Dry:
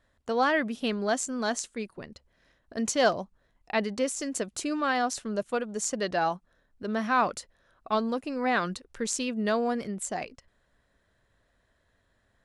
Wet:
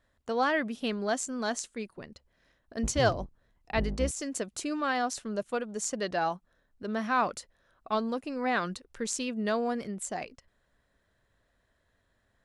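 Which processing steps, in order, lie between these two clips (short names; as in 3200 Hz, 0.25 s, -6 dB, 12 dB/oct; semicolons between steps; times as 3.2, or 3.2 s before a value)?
2.83–4.11 octaver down 2 oct, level +4 dB; gain -2.5 dB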